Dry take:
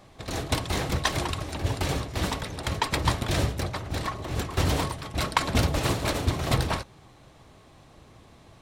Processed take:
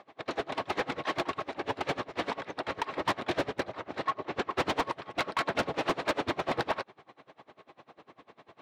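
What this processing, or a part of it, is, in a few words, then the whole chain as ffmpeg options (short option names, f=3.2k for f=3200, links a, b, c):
helicopter radio: -filter_complex "[0:a]highpass=340,lowpass=2.6k,aeval=exprs='val(0)*pow(10,-26*(0.5-0.5*cos(2*PI*10*n/s))/20)':c=same,asoftclip=type=hard:threshold=-29.5dB,asettb=1/sr,asplit=3[a][b][c];[a]atrim=end=4.014[d];[b]atrim=start=4.01:end=4.54,asetpts=PTS-STARTPTS,afade=t=in:d=0.004:c=qsin,afade=t=out:st=0.526:d=0.004:c=qsin,lowpass=7.7k[e];[c]atrim=start=4.536[f];[d][e]acrossfade=d=0.004:c1=hsin:c2=qsin[g];[g][f]acrossfade=d=0.004:c1=qsin:c2=hsin,volume=7.5dB"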